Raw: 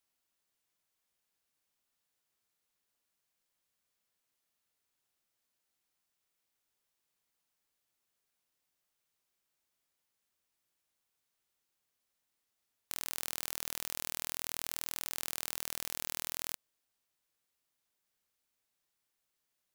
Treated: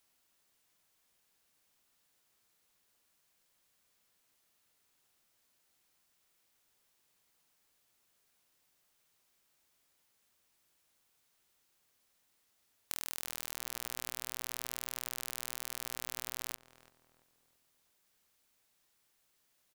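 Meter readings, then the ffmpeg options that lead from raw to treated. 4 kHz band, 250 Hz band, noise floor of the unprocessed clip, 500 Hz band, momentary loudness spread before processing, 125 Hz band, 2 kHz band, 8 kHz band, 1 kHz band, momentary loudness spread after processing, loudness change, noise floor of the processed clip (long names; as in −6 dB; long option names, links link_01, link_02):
−2.0 dB, −2.5 dB, −84 dBFS, −1.5 dB, 2 LU, −1.5 dB, −2.0 dB, −2.0 dB, −2.0 dB, 2 LU, −2.0 dB, −75 dBFS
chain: -filter_complex "[0:a]acompressor=threshold=-42dB:ratio=5,asplit=2[link_01][link_02];[link_02]adelay=338,lowpass=frequency=1400:poles=1,volume=-12.5dB,asplit=2[link_03][link_04];[link_04]adelay=338,lowpass=frequency=1400:poles=1,volume=0.45,asplit=2[link_05][link_06];[link_06]adelay=338,lowpass=frequency=1400:poles=1,volume=0.45,asplit=2[link_07][link_08];[link_08]adelay=338,lowpass=frequency=1400:poles=1,volume=0.45[link_09];[link_03][link_05][link_07][link_09]amix=inputs=4:normalize=0[link_10];[link_01][link_10]amix=inputs=2:normalize=0,volume=8.5dB"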